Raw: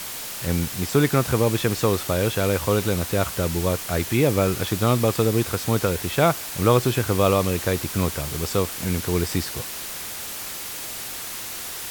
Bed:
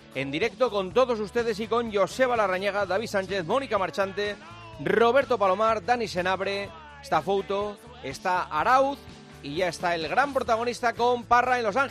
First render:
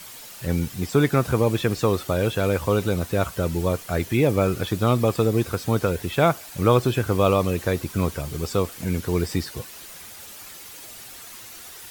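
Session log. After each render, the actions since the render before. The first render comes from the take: denoiser 10 dB, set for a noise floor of -33 dBFS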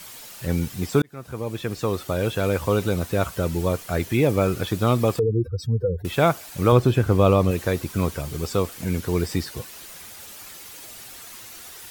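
1.02–2.89 fade in equal-power; 5.19–6.05 spectral contrast raised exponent 3.6; 6.72–7.51 tilt -1.5 dB/oct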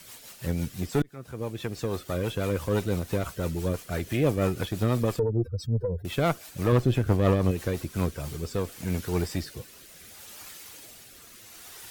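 tube stage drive 13 dB, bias 0.55; rotary speaker horn 6 Hz, later 0.7 Hz, at 7.69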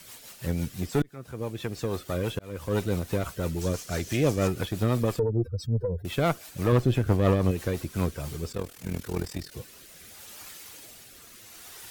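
2.39–2.79 fade in; 3.61–4.48 bell 6000 Hz +10 dB 1 oct; 8.52–9.52 AM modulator 40 Hz, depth 75%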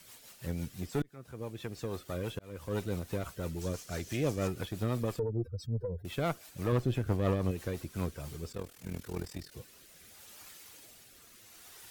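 gain -7.5 dB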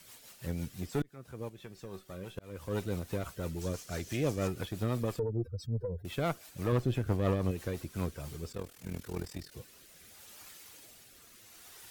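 1.49–2.38 resonator 190 Hz, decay 0.19 s, mix 70%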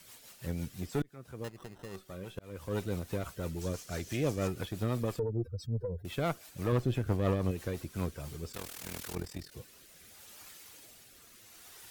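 1.44–1.96 sample-rate reducer 2300 Hz; 8.53–9.15 spectral compressor 2:1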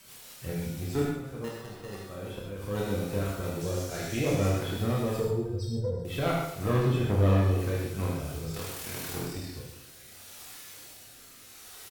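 reverse bouncing-ball echo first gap 30 ms, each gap 1.5×, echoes 5; non-linear reverb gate 0.15 s flat, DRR -1.5 dB

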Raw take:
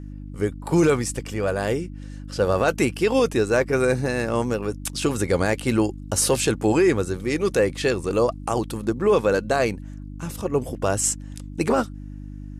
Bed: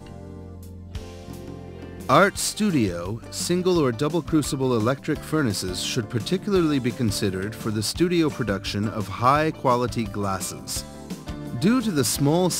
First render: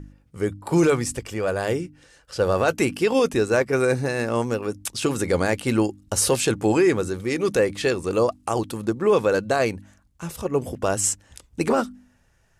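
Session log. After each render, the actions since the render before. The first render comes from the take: de-hum 50 Hz, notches 6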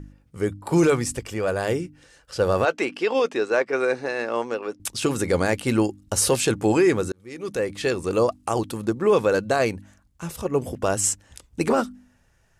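2.65–4.8 BPF 380–4400 Hz; 7.12–8.03 fade in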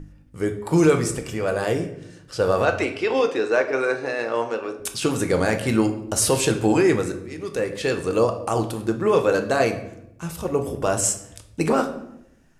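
shoebox room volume 200 m³, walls mixed, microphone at 0.51 m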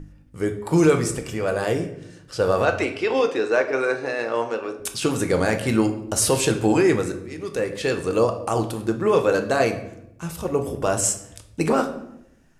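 nothing audible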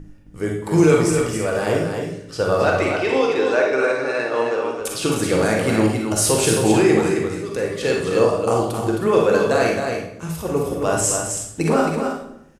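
on a send: echo 0.266 s -6 dB; on the sum: Schroeder reverb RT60 0.46 s, DRR 1.5 dB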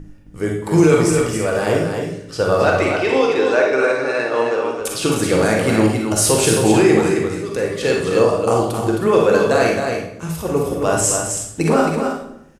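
gain +2.5 dB; limiter -3 dBFS, peak gain reduction 2 dB

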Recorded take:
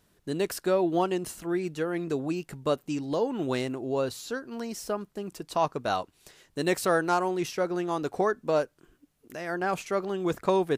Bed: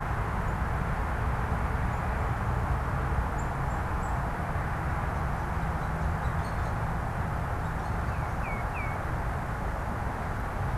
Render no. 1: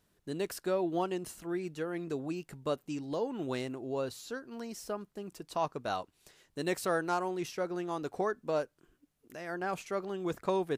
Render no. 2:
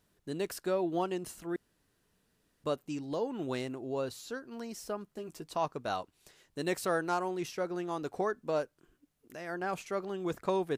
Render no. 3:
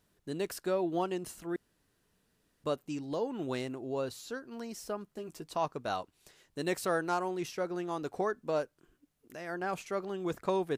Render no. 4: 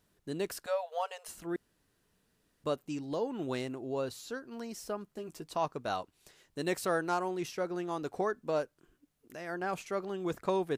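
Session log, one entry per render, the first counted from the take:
gain -6.5 dB
1.56–2.64 room tone; 5.08–5.5 doubler 13 ms -5 dB
nothing audible
0.66–1.28 brick-wall FIR high-pass 430 Hz

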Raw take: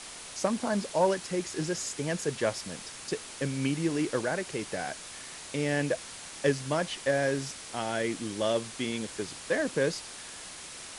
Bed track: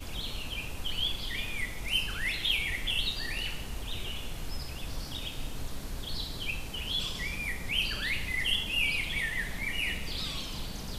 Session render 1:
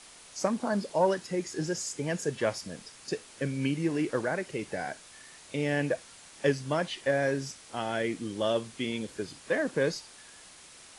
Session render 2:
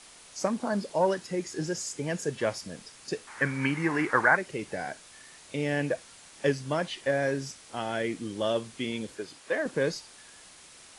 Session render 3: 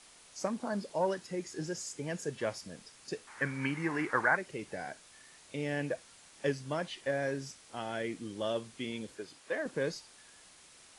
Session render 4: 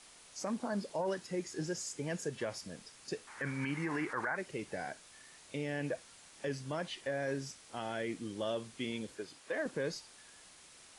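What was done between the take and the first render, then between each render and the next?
noise print and reduce 8 dB
3.27–4.37 band shelf 1300 Hz +14.5 dB; 9.15–9.66 tone controls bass -11 dB, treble -2 dB
gain -6 dB
limiter -26.5 dBFS, peak gain reduction 11.5 dB

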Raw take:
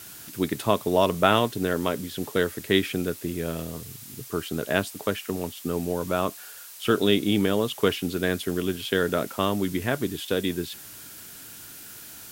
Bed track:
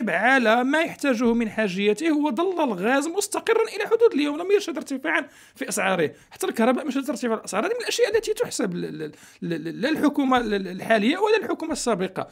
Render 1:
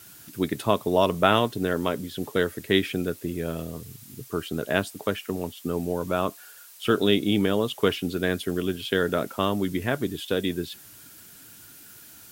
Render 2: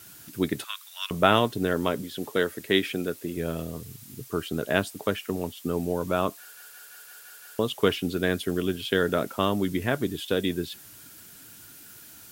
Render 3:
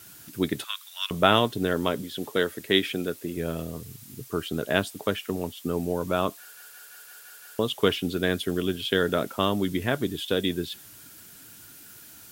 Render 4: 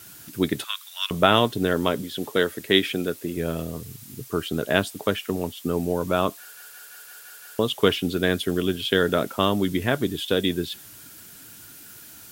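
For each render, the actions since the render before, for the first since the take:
denoiser 6 dB, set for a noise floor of -43 dBFS
0.64–1.11 elliptic high-pass 1400 Hz, stop band 80 dB; 2.02–3.37 HPF 210 Hz 6 dB/oct; 6.4 stutter in place 0.17 s, 7 plays
dynamic EQ 3400 Hz, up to +4 dB, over -48 dBFS, Q 4.1
gain +3 dB; limiter -3 dBFS, peak gain reduction 2 dB

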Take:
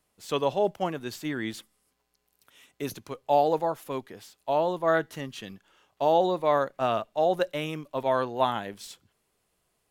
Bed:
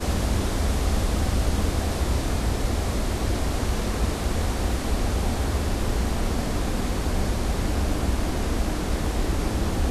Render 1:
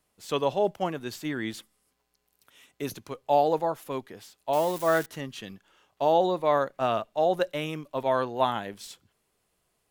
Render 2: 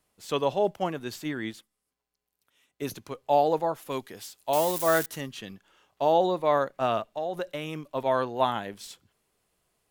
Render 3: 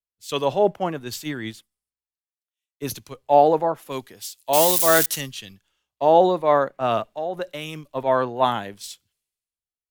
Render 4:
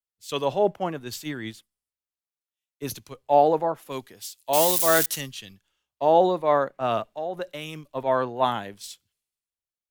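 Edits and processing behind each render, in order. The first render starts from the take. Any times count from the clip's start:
4.53–5.06 switching spikes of -27 dBFS
1.24–2.82 upward expander, over -51 dBFS; 3.88–5.28 high shelf 2900 Hz -> 5700 Hz +10 dB; 7–7.8 compressor 4:1, threshold -28 dBFS
in parallel at +1.5 dB: limiter -21 dBFS, peak gain reduction 10.5 dB; on the sum: three-band expander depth 100%
gain -3 dB

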